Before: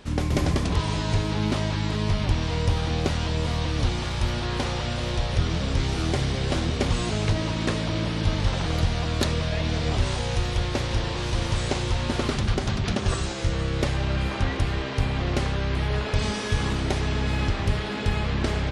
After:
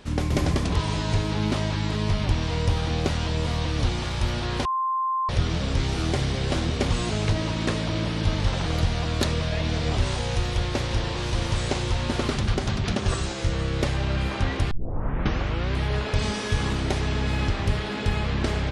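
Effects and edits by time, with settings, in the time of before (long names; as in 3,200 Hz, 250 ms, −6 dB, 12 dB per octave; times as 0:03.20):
0:04.65–0:05.29: beep over 1,050 Hz −22 dBFS
0:14.71: tape start 1.02 s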